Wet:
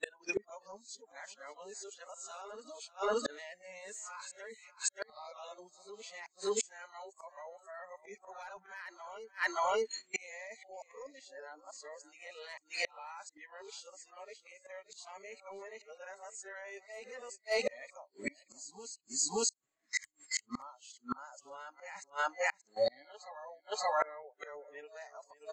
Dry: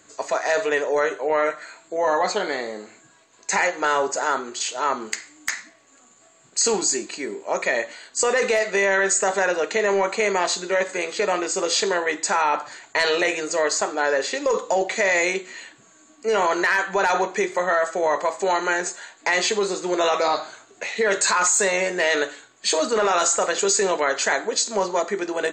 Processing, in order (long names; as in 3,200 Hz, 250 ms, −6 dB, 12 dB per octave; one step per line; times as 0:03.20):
played backwards from end to start
noise reduction from a noise print of the clip's start 24 dB
noise gate −50 dBFS, range −16 dB
on a send: single-tap delay 577 ms −18.5 dB
on the sum: gate with flip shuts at −28 dBFS, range −35 dB
level +8 dB